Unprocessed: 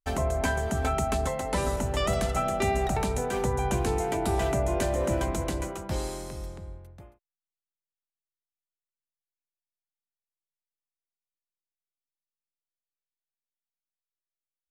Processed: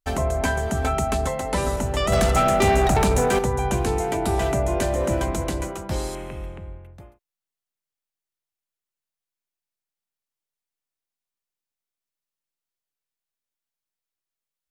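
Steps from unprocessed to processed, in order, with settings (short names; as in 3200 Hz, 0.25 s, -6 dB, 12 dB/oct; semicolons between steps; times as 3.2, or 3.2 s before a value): 2.12–3.39 sample leveller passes 2; 6.15–6.94 resonant high shelf 3600 Hz -10 dB, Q 3; gain +4 dB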